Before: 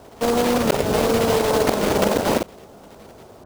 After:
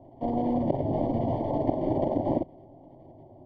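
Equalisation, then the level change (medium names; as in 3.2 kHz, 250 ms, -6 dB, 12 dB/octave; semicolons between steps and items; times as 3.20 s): boxcar filter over 34 samples; distance through air 270 m; static phaser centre 300 Hz, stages 8; 0.0 dB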